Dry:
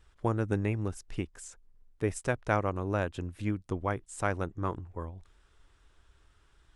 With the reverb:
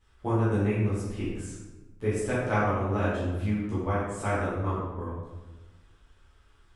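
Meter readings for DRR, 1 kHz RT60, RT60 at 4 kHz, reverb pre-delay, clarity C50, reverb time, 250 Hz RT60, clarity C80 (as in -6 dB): -11.5 dB, 1.1 s, 0.80 s, 8 ms, -1.0 dB, 1.2 s, 1.4 s, 2.0 dB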